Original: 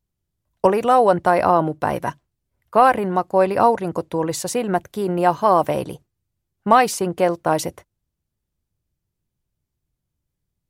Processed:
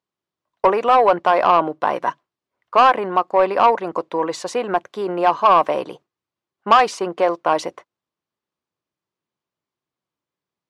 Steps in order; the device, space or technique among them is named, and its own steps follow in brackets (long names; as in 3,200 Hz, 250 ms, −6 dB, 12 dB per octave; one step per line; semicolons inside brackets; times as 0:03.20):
intercom (band-pass filter 350–4,500 Hz; parametric band 1,100 Hz +7 dB 0.4 octaves; soft clipping −7 dBFS, distortion −13 dB)
level +2 dB